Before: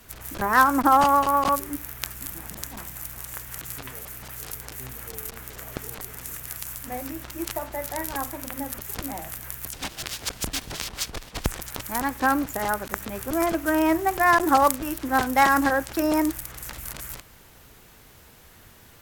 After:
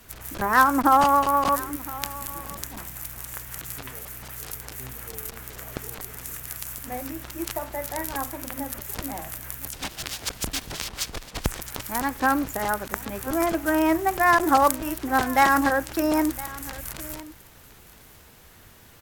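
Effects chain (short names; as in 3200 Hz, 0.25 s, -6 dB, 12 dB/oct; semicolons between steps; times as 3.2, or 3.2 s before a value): echo 1.013 s -19 dB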